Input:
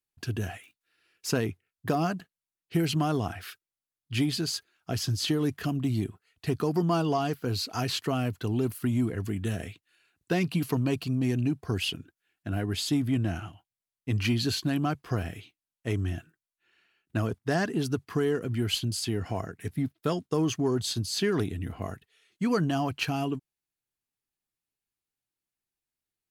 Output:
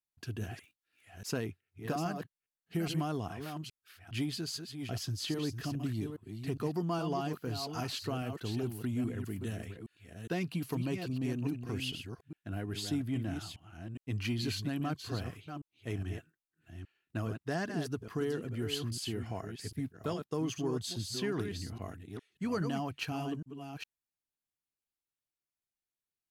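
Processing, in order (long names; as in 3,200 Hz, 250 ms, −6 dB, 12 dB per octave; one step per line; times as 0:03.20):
delay that plays each chunk backwards 411 ms, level −7 dB
level −8 dB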